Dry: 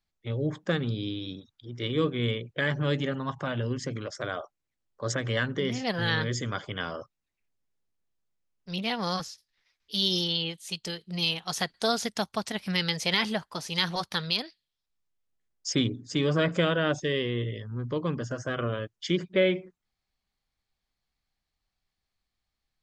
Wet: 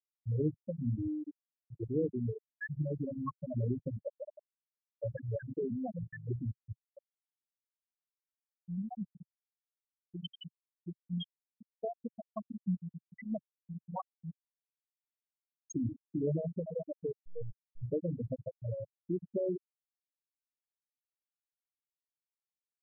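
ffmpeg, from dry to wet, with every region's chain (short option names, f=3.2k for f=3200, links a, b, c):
-filter_complex "[0:a]asettb=1/sr,asplit=3[a][b][c];[a]atrim=end=17.124[d];[b]atrim=start=17.12:end=17.83,asetpts=PTS-STARTPTS,afade=t=in:d=0.004:c=qsin,afade=t=out:st=0.706:d=0.004:c=qsin,agate=range=-33dB:threshold=-31dB:ratio=3:release=100:detection=peak,acrusher=bits=4:dc=4:mix=0:aa=0.000001[e];[c]atrim=start=17.826[f];[d][e]acrossfade=d=0.004:c1=hsin:c2=qsin[g];[g][f]acrossfade=d=0.004:c1=qsin:c2=hsin,alimiter=limit=-22.5dB:level=0:latency=1:release=150,afftfilt=real='re*gte(hypot(re,im),0.141)':imag='im*gte(hypot(re,im),0.141)':win_size=1024:overlap=0.75,equalizer=f=130:w=2.4:g=-3,volume=1.5dB"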